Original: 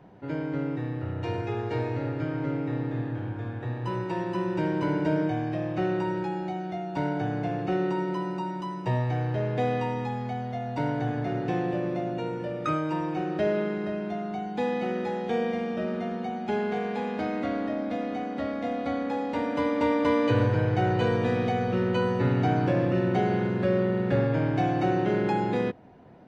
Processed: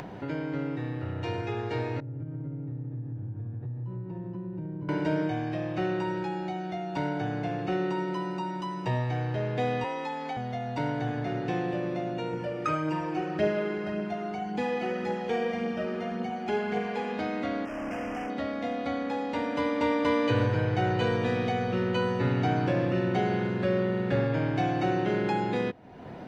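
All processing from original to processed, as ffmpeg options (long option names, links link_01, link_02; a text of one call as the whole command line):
ffmpeg -i in.wav -filter_complex "[0:a]asettb=1/sr,asplit=3[link_01][link_02][link_03];[link_01]atrim=end=2.004[link_04];[link_02]atrim=start=2:end=4.89,asetpts=PTS-STARTPTS,afade=type=in:duration=0.004:curve=qsin,afade=type=out:start_time=2.886:duration=0.004:curve=qsin,bandpass=frequency=130:width_type=q:width=1.6,acompressor=threshold=-36dB:ratio=2:attack=3.2:release=140:knee=1:detection=peak[link_05];[link_03]atrim=start=4.886[link_06];[link_04][link_05]acrossfade=duration=0.004:curve1=hsin:curve2=qsin[link_07];[link_07][link_06]acrossfade=duration=0.004:curve1=qsin:curve2=hsin,asettb=1/sr,asplit=3[link_08][link_09][link_10];[link_08]atrim=end=9.844[link_11];[link_09]atrim=start=9.84:end=10.37,asetpts=PTS-STARTPTS,afade=type=in:duration=0.004:curve=qsin,afade=type=out:start_time=0.526:duration=0.004:curve=qsin,highpass=320,afreqshift=36[link_12];[link_10]atrim=start=10.366[link_13];[link_11][link_12]acrossfade=duration=0.004:curve1=hsin:curve2=qsin[link_14];[link_14][link_13]acrossfade=duration=0.004:curve1=qsin:curve2=hsin,asettb=1/sr,asplit=3[link_15][link_16][link_17];[link_15]atrim=end=12.334[link_18];[link_16]atrim=start=12.33:end=17.13,asetpts=PTS-STARTPTS,afade=type=in:duration=0.004:curve=qsin,afade=type=out:start_time=4.796:duration=0.004:curve=qsin,bandreject=frequency=3700:width=7.8,aphaser=in_gain=1:out_gain=1:delay=3:decay=0.34:speed=1.8:type=triangular[link_19];[link_17]atrim=start=17.126[link_20];[link_18][link_19]acrossfade=duration=0.004:curve1=hsin:curve2=qsin[link_21];[link_21][link_20]acrossfade=duration=0.004:curve1=qsin:curve2=hsin,asettb=1/sr,asplit=3[link_22][link_23][link_24];[link_22]atrim=end=17.654[link_25];[link_23]atrim=start=17.65:end=18.3,asetpts=PTS-STARTPTS,afade=type=in:duration=0.004:curve=qsin,afade=type=out:start_time=0.646:duration=0.004:curve=qsin,bandreject=frequency=50:width_type=h:width=6,bandreject=frequency=100:width_type=h:width=6,bandreject=frequency=150:width_type=h:width=6,bandreject=frequency=200:width_type=h:width=6,bandreject=frequency=250:width_type=h:width=6,asoftclip=type=hard:threshold=-34dB,asuperstop=centerf=3900:order=8:qfactor=2[link_26];[link_24]atrim=start=18.296[link_27];[link_25][link_26]acrossfade=duration=0.004:curve1=hsin:curve2=qsin[link_28];[link_28][link_27]acrossfade=duration=0.004:curve1=qsin:curve2=hsin,acompressor=mode=upward:threshold=-27dB:ratio=2.5,equalizer=frequency=4000:width=0.41:gain=4.5,volume=-2.5dB" out.wav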